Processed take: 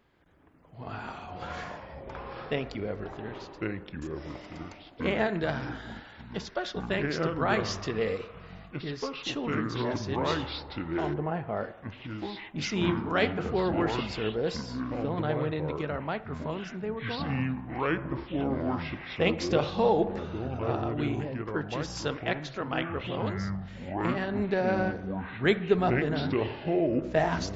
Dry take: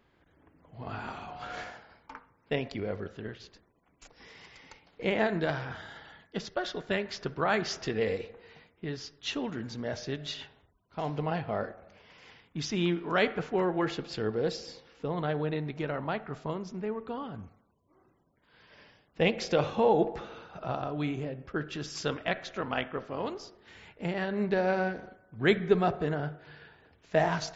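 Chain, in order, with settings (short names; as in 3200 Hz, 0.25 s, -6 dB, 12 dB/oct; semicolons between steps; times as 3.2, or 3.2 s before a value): echoes that change speed 0.261 s, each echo -5 st, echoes 3; 11.13–11.55 LPF 1300 Hz -> 2400 Hz 12 dB/oct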